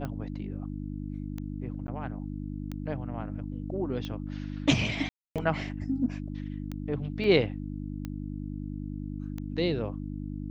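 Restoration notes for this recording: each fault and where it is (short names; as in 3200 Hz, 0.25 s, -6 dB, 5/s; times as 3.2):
hum 50 Hz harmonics 6 -36 dBFS
tick 45 rpm -23 dBFS
1.87–1.88 gap 10 ms
5.09–5.36 gap 0.267 s
7.24 gap 2.9 ms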